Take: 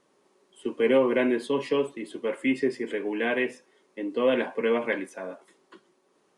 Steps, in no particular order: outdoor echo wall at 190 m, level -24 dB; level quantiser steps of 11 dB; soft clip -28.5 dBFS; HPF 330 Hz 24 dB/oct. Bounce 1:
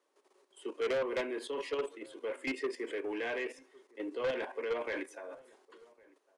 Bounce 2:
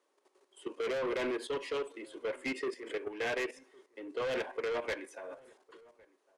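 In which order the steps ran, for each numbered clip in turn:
level quantiser > HPF > soft clip > outdoor echo; HPF > soft clip > level quantiser > outdoor echo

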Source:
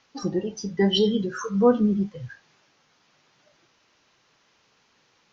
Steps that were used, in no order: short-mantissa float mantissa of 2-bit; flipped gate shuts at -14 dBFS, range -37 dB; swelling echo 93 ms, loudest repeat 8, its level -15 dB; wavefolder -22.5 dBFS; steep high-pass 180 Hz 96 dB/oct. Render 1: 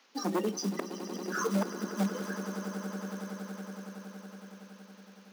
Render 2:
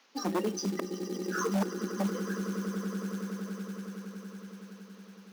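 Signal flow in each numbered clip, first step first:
flipped gate > wavefolder > swelling echo > short-mantissa float > steep high-pass; flipped gate > swelling echo > wavefolder > steep high-pass > short-mantissa float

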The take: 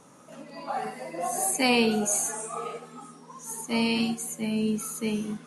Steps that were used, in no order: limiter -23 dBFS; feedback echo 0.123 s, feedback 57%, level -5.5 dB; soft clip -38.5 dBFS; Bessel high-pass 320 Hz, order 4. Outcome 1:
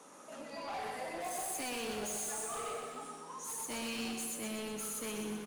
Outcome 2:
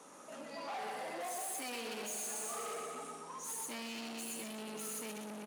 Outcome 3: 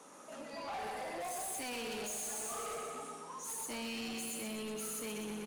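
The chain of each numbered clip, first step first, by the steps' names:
Bessel high-pass > limiter > soft clip > feedback echo; feedback echo > limiter > soft clip > Bessel high-pass; feedback echo > limiter > Bessel high-pass > soft clip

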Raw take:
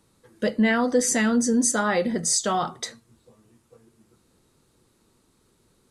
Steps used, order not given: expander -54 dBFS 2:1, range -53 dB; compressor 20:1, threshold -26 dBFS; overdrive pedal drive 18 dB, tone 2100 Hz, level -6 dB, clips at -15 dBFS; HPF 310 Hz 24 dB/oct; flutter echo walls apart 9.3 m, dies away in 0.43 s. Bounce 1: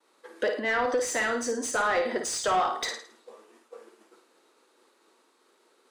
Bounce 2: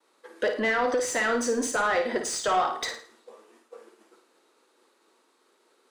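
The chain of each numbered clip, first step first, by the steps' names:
compressor > flutter echo > expander > HPF > overdrive pedal; expander > HPF > compressor > overdrive pedal > flutter echo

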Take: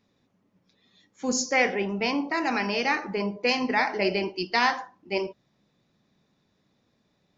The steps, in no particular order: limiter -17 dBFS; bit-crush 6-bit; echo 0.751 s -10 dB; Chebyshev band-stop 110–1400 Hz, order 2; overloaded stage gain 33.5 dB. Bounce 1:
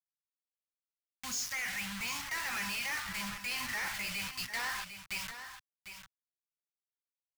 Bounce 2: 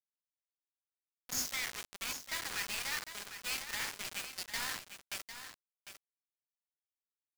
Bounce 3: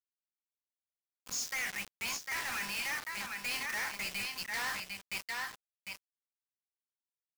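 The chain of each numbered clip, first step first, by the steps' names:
bit-crush > limiter > Chebyshev band-stop > overloaded stage > echo; limiter > overloaded stage > Chebyshev band-stop > bit-crush > echo; Chebyshev band-stop > bit-crush > echo > limiter > overloaded stage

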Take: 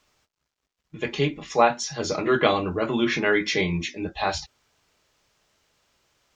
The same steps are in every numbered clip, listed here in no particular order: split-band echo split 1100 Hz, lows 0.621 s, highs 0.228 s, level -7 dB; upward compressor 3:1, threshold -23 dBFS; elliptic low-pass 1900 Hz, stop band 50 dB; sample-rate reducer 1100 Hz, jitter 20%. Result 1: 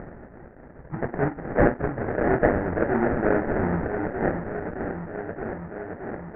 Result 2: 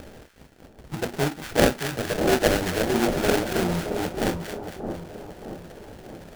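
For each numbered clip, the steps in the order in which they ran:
split-band echo > upward compressor > sample-rate reducer > elliptic low-pass; upward compressor > elliptic low-pass > sample-rate reducer > split-band echo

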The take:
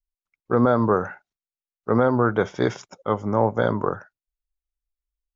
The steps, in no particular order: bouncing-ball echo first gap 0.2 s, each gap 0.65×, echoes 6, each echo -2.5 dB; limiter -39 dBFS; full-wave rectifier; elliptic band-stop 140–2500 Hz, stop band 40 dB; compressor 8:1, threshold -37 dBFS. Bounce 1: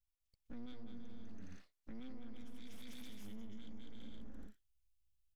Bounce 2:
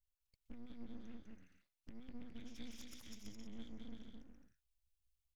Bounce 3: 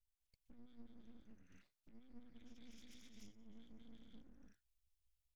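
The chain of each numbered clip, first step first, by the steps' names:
elliptic band-stop > full-wave rectifier > bouncing-ball echo > compressor > limiter; compressor > elliptic band-stop > limiter > bouncing-ball echo > full-wave rectifier; bouncing-ball echo > compressor > limiter > elliptic band-stop > full-wave rectifier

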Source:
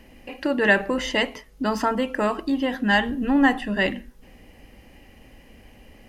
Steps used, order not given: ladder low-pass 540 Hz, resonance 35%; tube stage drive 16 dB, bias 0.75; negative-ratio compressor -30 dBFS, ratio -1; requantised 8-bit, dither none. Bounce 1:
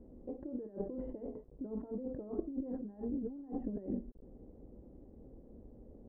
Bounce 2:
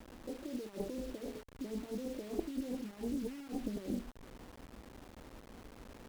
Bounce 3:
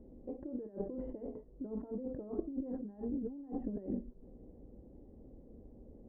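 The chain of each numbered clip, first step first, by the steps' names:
negative-ratio compressor > tube stage > requantised > ladder low-pass; negative-ratio compressor > ladder low-pass > requantised > tube stage; negative-ratio compressor > requantised > tube stage > ladder low-pass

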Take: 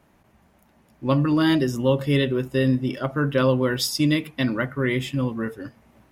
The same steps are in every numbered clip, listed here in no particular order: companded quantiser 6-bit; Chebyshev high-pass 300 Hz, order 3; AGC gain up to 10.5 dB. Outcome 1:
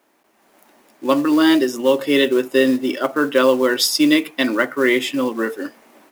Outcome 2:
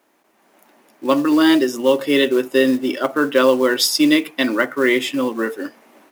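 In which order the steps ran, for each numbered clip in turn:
Chebyshev high-pass > companded quantiser > AGC; Chebyshev high-pass > AGC > companded quantiser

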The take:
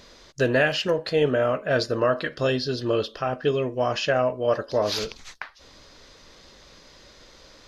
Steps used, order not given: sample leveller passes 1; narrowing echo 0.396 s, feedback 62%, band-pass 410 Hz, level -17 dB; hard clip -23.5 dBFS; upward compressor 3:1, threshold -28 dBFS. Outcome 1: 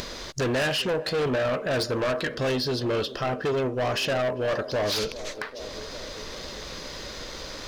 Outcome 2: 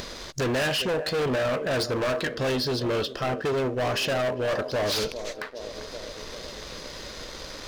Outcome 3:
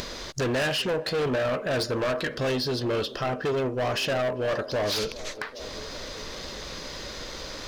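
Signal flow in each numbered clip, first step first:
hard clip > narrowing echo > sample leveller > upward compressor; narrowing echo > sample leveller > upward compressor > hard clip; hard clip > sample leveller > narrowing echo > upward compressor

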